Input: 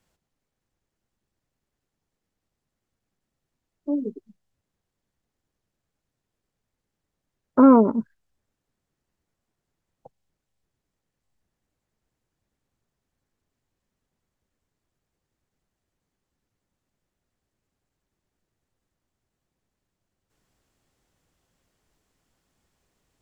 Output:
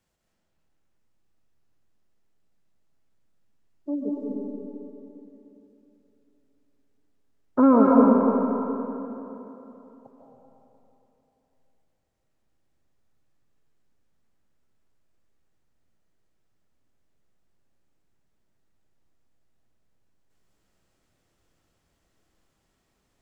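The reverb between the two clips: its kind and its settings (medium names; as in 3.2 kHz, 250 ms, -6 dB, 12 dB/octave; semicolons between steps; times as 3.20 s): algorithmic reverb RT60 3.3 s, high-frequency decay 0.7×, pre-delay 110 ms, DRR -4 dB; trim -4 dB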